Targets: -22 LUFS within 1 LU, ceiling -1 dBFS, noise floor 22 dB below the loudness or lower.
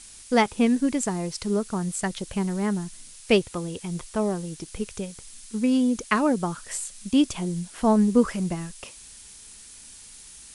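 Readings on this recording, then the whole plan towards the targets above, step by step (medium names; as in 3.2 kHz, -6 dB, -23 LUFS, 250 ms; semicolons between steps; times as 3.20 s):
noise floor -46 dBFS; noise floor target -48 dBFS; loudness -25.5 LUFS; peak level -7.0 dBFS; loudness target -22.0 LUFS
-> noise print and reduce 6 dB; trim +3.5 dB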